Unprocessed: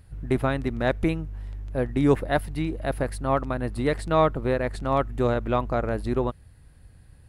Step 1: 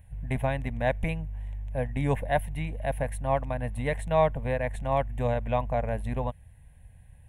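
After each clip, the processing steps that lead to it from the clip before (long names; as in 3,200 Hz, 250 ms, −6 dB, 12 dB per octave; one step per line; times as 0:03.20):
phaser with its sweep stopped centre 1,300 Hz, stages 6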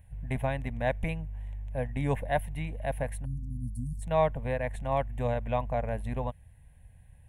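time-frequency box erased 0:03.24–0:04.02, 270–4,300 Hz
level −2.5 dB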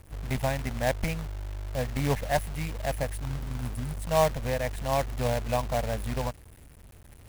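log-companded quantiser 4 bits
level +1.5 dB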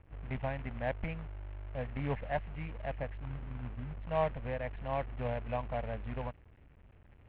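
Butterworth low-pass 2,900 Hz 36 dB per octave
level −8 dB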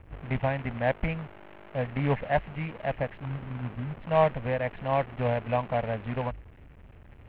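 mains-hum notches 50/100 Hz
level +9 dB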